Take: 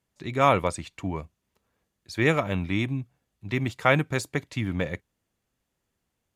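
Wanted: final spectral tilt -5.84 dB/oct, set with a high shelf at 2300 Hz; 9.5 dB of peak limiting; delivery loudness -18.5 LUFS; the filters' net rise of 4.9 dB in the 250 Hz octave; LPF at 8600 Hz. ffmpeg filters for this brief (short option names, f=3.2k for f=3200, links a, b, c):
-af "lowpass=8.6k,equalizer=f=250:t=o:g=6.5,highshelf=f=2.3k:g=-6,volume=10dB,alimiter=limit=-4.5dB:level=0:latency=1"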